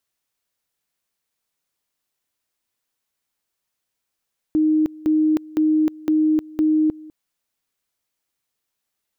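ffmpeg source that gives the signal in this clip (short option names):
-f lavfi -i "aevalsrc='pow(10,(-14-22*gte(mod(t,0.51),0.31))/20)*sin(2*PI*310*t)':d=2.55:s=44100"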